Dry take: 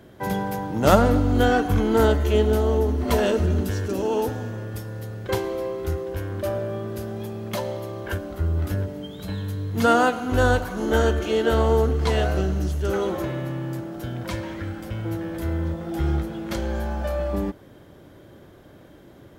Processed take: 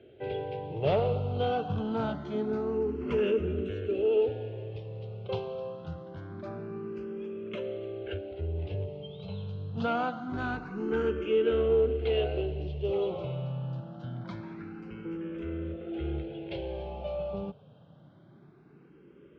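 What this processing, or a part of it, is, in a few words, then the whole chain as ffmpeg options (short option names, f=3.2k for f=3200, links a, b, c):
barber-pole phaser into a guitar amplifier: -filter_complex "[0:a]asplit=2[a][b];[b]afreqshift=0.25[c];[a][c]amix=inputs=2:normalize=1,asoftclip=type=tanh:threshold=-15dB,highpass=88,equalizer=f=150:t=q:w=4:g=8,equalizer=f=280:t=q:w=4:g=-4,equalizer=f=420:t=q:w=4:g=8,equalizer=f=1k:t=q:w=4:g=-5,equalizer=f=1.8k:t=q:w=4:g=-10,equalizer=f=2.7k:t=q:w=4:g=7,lowpass=f=3.6k:w=0.5412,lowpass=f=3.6k:w=1.3066,volume=-6dB"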